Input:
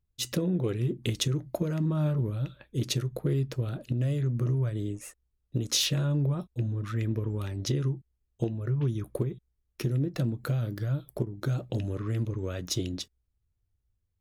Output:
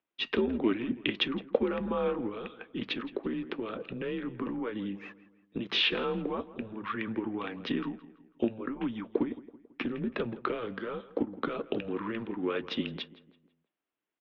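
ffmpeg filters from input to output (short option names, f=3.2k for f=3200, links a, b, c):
-filter_complex "[0:a]asplit=2[a][b];[b]adelay=165,lowpass=f=2.5k:p=1,volume=-17dB,asplit=2[c][d];[d]adelay=165,lowpass=f=2.5k:p=1,volume=0.47,asplit=2[e][f];[f]adelay=165,lowpass=f=2.5k:p=1,volume=0.47,asplit=2[g][h];[h]adelay=165,lowpass=f=2.5k:p=1,volume=0.47[i];[a][c][e][g][i]amix=inputs=5:normalize=0,highpass=f=390:t=q:w=0.5412,highpass=f=390:t=q:w=1.307,lowpass=f=3.3k:t=q:w=0.5176,lowpass=f=3.3k:t=q:w=0.7071,lowpass=f=3.3k:t=q:w=1.932,afreqshift=-110,asettb=1/sr,asplit=3[j][k][l];[j]atrim=end=2.264[m];[k]atrim=start=2.26:end=4.27,asetpts=PTS-STARTPTS,afade=t=in:d=0.004:c=qsin,afade=t=out:st=2.006:d=0.004:c=qsin,acompressor=threshold=-37dB:ratio=6[n];[l]atrim=start=4.266[o];[m][n]acrossfade=d=0.004:c1=hsin:c2=qsin[p];[p][o]acrossfade=d=0.004:c1=qsin:c2=hsin,volume=7.5dB"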